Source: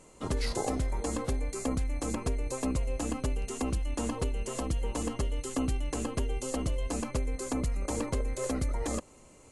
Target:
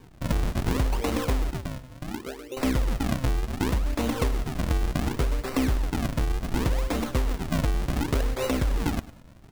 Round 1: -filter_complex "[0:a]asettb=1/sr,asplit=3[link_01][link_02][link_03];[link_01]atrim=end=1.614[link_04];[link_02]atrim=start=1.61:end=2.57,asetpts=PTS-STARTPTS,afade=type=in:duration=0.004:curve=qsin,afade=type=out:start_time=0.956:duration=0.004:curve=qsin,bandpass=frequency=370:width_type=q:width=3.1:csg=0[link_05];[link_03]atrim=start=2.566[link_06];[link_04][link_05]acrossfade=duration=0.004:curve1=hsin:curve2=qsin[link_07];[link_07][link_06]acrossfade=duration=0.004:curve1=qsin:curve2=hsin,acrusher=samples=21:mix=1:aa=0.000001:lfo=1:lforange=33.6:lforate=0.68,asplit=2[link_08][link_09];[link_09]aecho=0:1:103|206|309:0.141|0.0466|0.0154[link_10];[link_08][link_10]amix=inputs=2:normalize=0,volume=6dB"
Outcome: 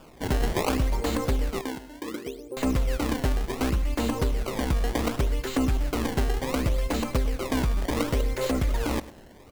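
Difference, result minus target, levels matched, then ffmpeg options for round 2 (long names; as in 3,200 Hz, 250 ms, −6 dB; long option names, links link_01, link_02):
sample-and-hold swept by an LFO: distortion −5 dB
-filter_complex "[0:a]asettb=1/sr,asplit=3[link_01][link_02][link_03];[link_01]atrim=end=1.614[link_04];[link_02]atrim=start=1.61:end=2.57,asetpts=PTS-STARTPTS,afade=type=in:duration=0.004:curve=qsin,afade=type=out:start_time=0.956:duration=0.004:curve=qsin,bandpass=frequency=370:width_type=q:width=3.1:csg=0[link_05];[link_03]atrim=start=2.566[link_06];[link_04][link_05]acrossfade=duration=0.004:curve1=hsin:curve2=qsin[link_07];[link_07][link_06]acrossfade=duration=0.004:curve1=qsin:curve2=hsin,acrusher=samples=64:mix=1:aa=0.000001:lfo=1:lforange=102:lforate=0.68,asplit=2[link_08][link_09];[link_09]aecho=0:1:103|206|309:0.141|0.0466|0.0154[link_10];[link_08][link_10]amix=inputs=2:normalize=0,volume=6dB"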